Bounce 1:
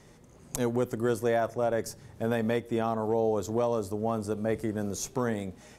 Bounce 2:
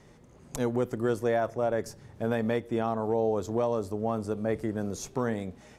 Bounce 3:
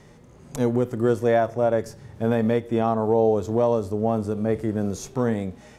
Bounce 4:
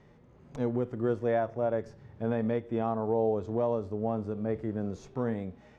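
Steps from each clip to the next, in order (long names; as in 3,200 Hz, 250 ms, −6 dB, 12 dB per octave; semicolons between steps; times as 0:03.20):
high-shelf EQ 6,000 Hz −8.5 dB
harmonic and percussive parts rebalanced harmonic +8 dB
Bessel low-pass filter 2,800 Hz, order 2; level −8 dB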